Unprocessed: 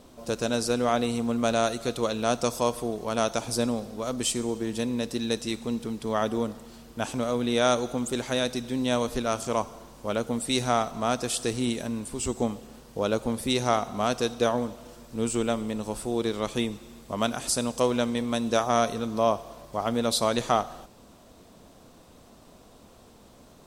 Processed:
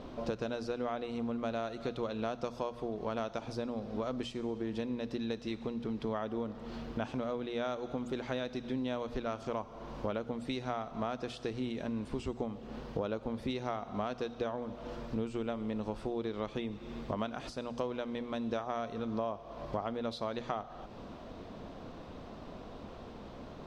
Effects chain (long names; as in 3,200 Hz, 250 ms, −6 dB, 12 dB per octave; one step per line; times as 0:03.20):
high-shelf EQ 9,700 Hz +4 dB
downward compressor 8 to 1, threshold −39 dBFS, peak gain reduction 20.5 dB
high-frequency loss of the air 250 metres
mains-hum notches 60/120/180/240 Hz
level +7 dB